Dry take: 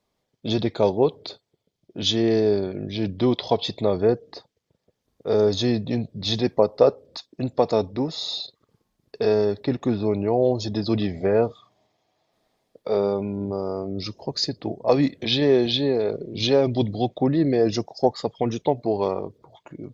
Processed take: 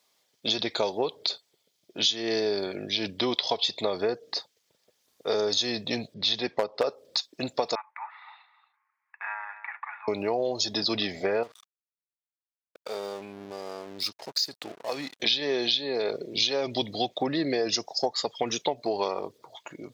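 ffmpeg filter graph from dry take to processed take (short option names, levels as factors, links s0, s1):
-filter_complex "[0:a]asettb=1/sr,asplit=3[s0][s1][s2];[s0]atrim=end=6.144[s3];[s1]atrim=start=6.14:end=6.84,asetpts=PTS-STARTPTS,afade=t=in:d=0.004:c=qsin,afade=t=out:st=0.696:d=0.004:c=qsin,lowpass=3600,asoftclip=type=hard:threshold=0.398[s4];[s2]atrim=start=6.836[s5];[s3][s4]acrossfade=d=0.004:c1=hsin:c2=qsin[s6];[s6][s5]acrossfade=d=0.004:c1=qsin:c2=hsin,asettb=1/sr,asplit=3[s7][s8][s9];[s7]atrim=end=7.754[s10];[s8]atrim=start=7.75:end=10.08,asetpts=PTS-STARTPTS,afade=t=in:d=0.004:c=qsin,afade=t=out:st=2.326:d=0.004:c=qsin,asuperpass=centerf=1400:order=12:qfactor=0.96,aecho=1:1:260:0.211,atrim=end_sample=102753[s11];[s9]atrim=start=10.076[s12];[s10][s11]acrossfade=d=0.004:c1=hsin:c2=qsin[s13];[s13][s12]acrossfade=d=0.004:c1=qsin:c2=hsin,asettb=1/sr,asplit=3[s14][s15][s16];[s14]atrim=end=11.434[s17];[s15]atrim=start=11.43:end=15.2,asetpts=PTS-STARTPTS,afade=t=in:d=0.004:c=qsin,afade=t=out:st=3.766:d=0.004:c=qsin,acompressor=threshold=0.0141:ratio=2:attack=3.2:release=140:knee=1:detection=peak,aeval=exprs='sgn(val(0))*max(abs(val(0))-0.00355,0)':c=same[s18];[s16]atrim=start=15.196[s19];[s17][s18]acrossfade=d=0.004:c1=hsin:c2=qsin[s20];[s20][s19]acrossfade=d=0.004:c1=qsin:c2=hsin,highpass=f=910:p=1,highshelf=f=2500:g=9,acompressor=threshold=0.0398:ratio=6,volume=1.78"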